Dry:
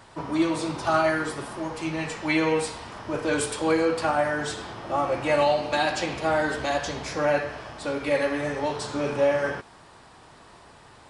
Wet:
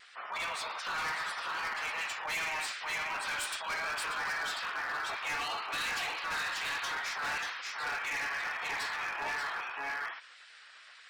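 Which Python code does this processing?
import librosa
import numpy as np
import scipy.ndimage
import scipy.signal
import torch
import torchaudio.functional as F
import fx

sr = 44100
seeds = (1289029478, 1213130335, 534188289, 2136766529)

p1 = fx.lowpass(x, sr, hz=2400.0, slope=6)
p2 = p1 + fx.echo_single(p1, sr, ms=586, db=-4.0, dry=0)
p3 = fx.spec_gate(p2, sr, threshold_db=-10, keep='weak')
p4 = fx.rider(p3, sr, range_db=3, speed_s=0.5)
p5 = p3 + F.gain(torch.from_numpy(p4), -3.0).numpy()
p6 = fx.spec_gate(p5, sr, threshold_db=-25, keep='strong')
p7 = scipy.signal.sosfilt(scipy.signal.butter(2, 1300.0, 'highpass', fs=sr, output='sos'), p6)
p8 = np.clip(p7, -10.0 ** (-32.0 / 20.0), 10.0 ** (-32.0 / 20.0))
y = fx.vibrato(p8, sr, rate_hz=2.6, depth_cents=35.0)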